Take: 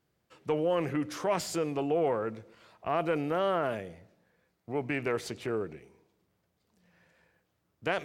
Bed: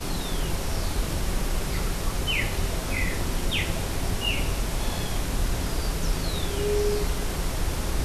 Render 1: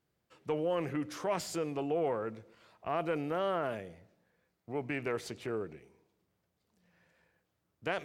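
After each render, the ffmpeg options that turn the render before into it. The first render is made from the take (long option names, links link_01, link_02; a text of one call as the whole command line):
ffmpeg -i in.wav -af "volume=-4dB" out.wav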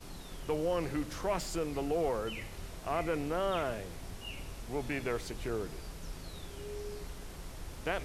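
ffmpeg -i in.wav -i bed.wav -filter_complex "[1:a]volume=-17.5dB[link_01];[0:a][link_01]amix=inputs=2:normalize=0" out.wav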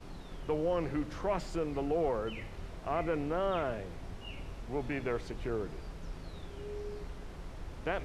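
ffmpeg -i in.wav -af "aemphasis=mode=reproduction:type=75fm" out.wav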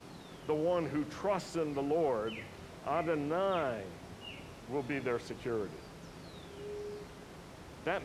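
ffmpeg -i in.wav -af "highpass=120,highshelf=frequency=5200:gain=4.5" out.wav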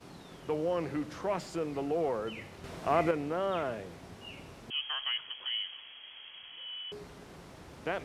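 ffmpeg -i in.wav -filter_complex "[0:a]asettb=1/sr,asplit=3[link_01][link_02][link_03];[link_01]atrim=end=4.704[link_04];[link_02]atrim=start=4.7:end=6.92,asetpts=PTS-STARTPTS,afade=type=in:duration=0.004:curve=qsin,afade=type=out:start_time=2.216:duration=0.004:curve=qsin,lowpass=frequency=2900:width_type=q:width=0.5098,lowpass=frequency=2900:width_type=q:width=0.6013,lowpass=frequency=2900:width_type=q:width=0.9,lowpass=frequency=2900:width_type=q:width=2.563,afreqshift=-3400[link_05];[link_03]atrim=start=6.916[link_06];[link_04][link_05]acrossfade=duration=0.004:curve1=hsin:curve2=qsin[link_07];[link_07][link_06]acrossfade=duration=0.004:curve1=qsin:curve2=hsin,asplit=3[link_08][link_09][link_10];[link_08]atrim=end=2.642[link_11];[link_09]atrim=start=2.638:end=3.112,asetpts=PTS-STARTPTS,volume=6dB[link_12];[link_10]atrim=start=3.108[link_13];[link_11][link_12]acrossfade=duration=0.004:curve1=hsin:curve2=hsin[link_14];[link_14][link_13]acrossfade=duration=0.004:curve1=hsin:curve2=hsin" out.wav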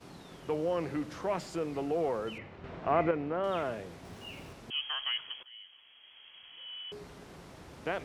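ffmpeg -i in.wav -filter_complex "[0:a]asettb=1/sr,asplit=3[link_01][link_02][link_03];[link_01]atrim=end=2.384[link_04];[link_02]atrim=start=2.38:end=3.44,asetpts=PTS-STARTPTS,afade=type=in:duration=0.004:curve=qsin,afade=type=out:start_time=1.056:duration=0.004:curve=qsin,lowpass=2500[link_05];[link_03]atrim=start=3.436[link_06];[link_04][link_05]acrossfade=duration=0.004:curve1=hsin:curve2=qsin[link_07];[link_07][link_06]acrossfade=duration=0.004:curve1=qsin:curve2=hsin,asettb=1/sr,asplit=3[link_08][link_09][link_10];[link_08]atrim=end=4.054[link_11];[link_09]atrim=start=4.05:end=4.53,asetpts=PTS-STARTPTS,afade=type=in:duration=0.004:curve=qsin,afade=type=out:start_time=0.476:duration=0.004:curve=qsin,aeval=exprs='val(0)+0.5*0.00188*sgn(val(0))':channel_layout=same[link_12];[link_10]atrim=start=4.526[link_13];[link_11][link_12]acrossfade=duration=0.004:curve1=hsin:curve2=qsin[link_14];[link_14][link_13]acrossfade=duration=0.004:curve1=qsin:curve2=hsin,asplit=2[link_15][link_16];[link_15]atrim=end=5.43,asetpts=PTS-STARTPTS,afade=type=out:start_time=5.426:duration=0.004:curve=hsin:silence=0.0944061[link_17];[link_16]atrim=start=5.43,asetpts=PTS-STARTPTS,afade=type=in:duration=1.68:silence=0.0944061[link_18];[link_17][link_18]concat=n=2:v=0:a=1" out.wav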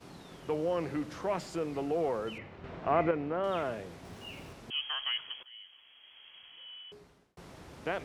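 ffmpeg -i in.wav -filter_complex "[0:a]asplit=2[link_01][link_02];[link_01]atrim=end=7.37,asetpts=PTS-STARTPTS,afade=type=out:start_time=6.36:duration=1.01[link_03];[link_02]atrim=start=7.37,asetpts=PTS-STARTPTS,afade=type=in:duration=0.004:curve=hsin[link_04];[link_03][link_04]concat=n=2:v=0:a=1" out.wav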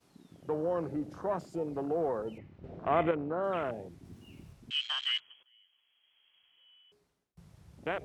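ffmpeg -i in.wav -af "aemphasis=mode=production:type=cd,afwtdn=0.0126" out.wav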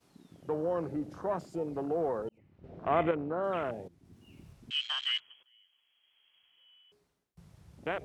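ffmpeg -i in.wav -filter_complex "[0:a]asplit=3[link_01][link_02][link_03];[link_01]atrim=end=2.29,asetpts=PTS-STARTPTS,afade=type=out:start_time=2.286:duration=0.004:curve=hsin[link_04];[link_02]atrim=start=2.29:end=3.88,asetpts=PTS-STARTPTS,afade=type=in:duration=0.6,afade=type=out:start_time=1.586:duration=0.004:curve=hsin:silence=0.211349[link_05];[link_03]atrim=start=3.88,asetpts=PTS-STARTPTS,afade=type=in:duration=0.73:silence=0.211349[link_06];[link_04][link_05][link_06]concat=n=3:v=0:a=1" out.wav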